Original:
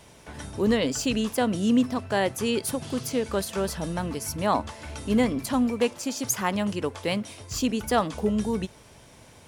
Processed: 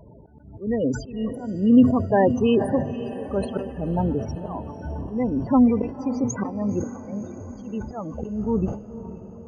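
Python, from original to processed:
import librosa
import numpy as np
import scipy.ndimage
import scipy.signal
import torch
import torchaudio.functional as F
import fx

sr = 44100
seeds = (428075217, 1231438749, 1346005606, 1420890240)

p1 = fx.lowpass(x, sr, hz=1200.0, slope=6)
p2 = fx.spec_topn(p1, sr, count=16)
p3 = fx.auto_swell(p2, sr, attack_ms=426.0)
p4 = p3 + fx.echo_diffused(p3, sr, ms=528, feedback_pct=56, wet_db=-13.0, dry=0)
p5 = fx.sustainer(p4, sr, db_per_s=110.0)
y = F.gain(torch.from_numpy(p5), 8.0).numpy()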